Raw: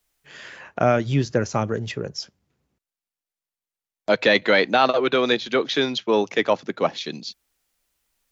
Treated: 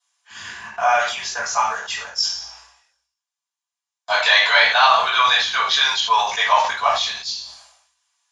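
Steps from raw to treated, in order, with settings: steep high-pass 720 Hz 48 dB/oct; in parallel at -9.5 dB: sample gate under -37.5 dBFS; on the sum: reverb RT60 0.45 s, pre-delay 3 ms, DRR -8.5 dB; downsampling 22050 Hz; sustainer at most 70 dB/s; gain -7.5 dB

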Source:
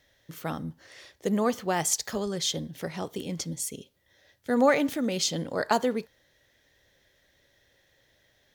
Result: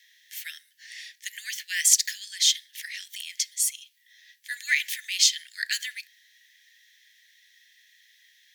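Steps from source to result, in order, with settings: steep high-pass 1700 Hz 96 dB/oct; gain +8.5 dB

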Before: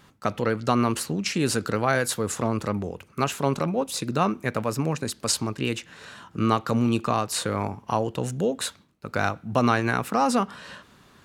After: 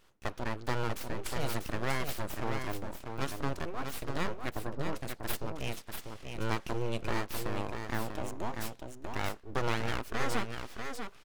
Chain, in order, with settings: full-wave rectifier; 4.51–4.93 LPF 1200 Hz 12 dB/oct; echo 0.642 s -6 dB; gain -8.5 dB

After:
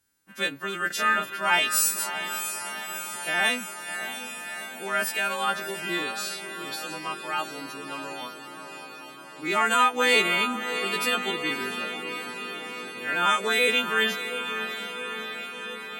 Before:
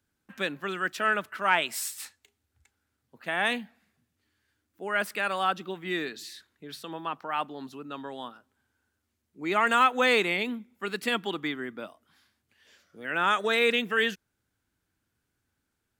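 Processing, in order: frequency quantiser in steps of 2 st; 0.87–1.35 doubler 33 ms -4 dB; diffused feedback echo 0.651 s, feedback 72%, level -9 dB

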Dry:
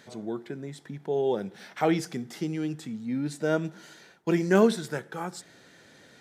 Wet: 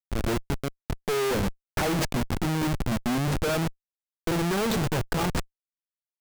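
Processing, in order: bell 290 Hz -4.5 dB 0.73 oct; Schmitt trigger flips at -35 dBFS; gain +6 dB

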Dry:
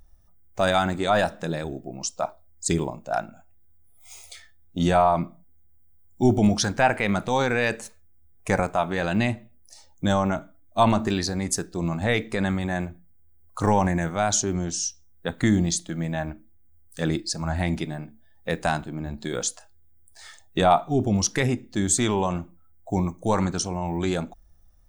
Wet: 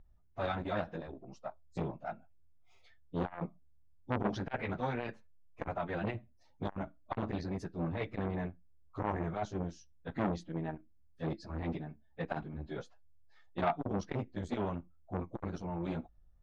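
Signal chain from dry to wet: low shelf 230 Hz +3.5 dB; plain phase-vocoder stretch 0.66×; air absorption 290 m; core saturation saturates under 1200 Hz; gain -6 dB

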